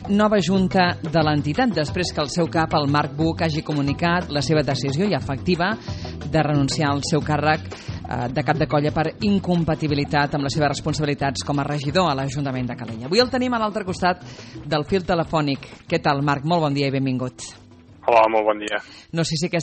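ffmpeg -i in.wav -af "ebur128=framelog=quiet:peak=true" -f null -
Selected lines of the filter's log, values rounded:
Integrated loudness:
  I:         -21.4 LUFS
  Threshold: -31.6 LUFS
Loudness range:
  LRA:         1.6 LU
  Threshold: -41.8 LUFS
  LRA low:   -22.6 LUFS
  LRA high:  -21.0 LUFS
True peak:
  Peak:       -4.4 dBFS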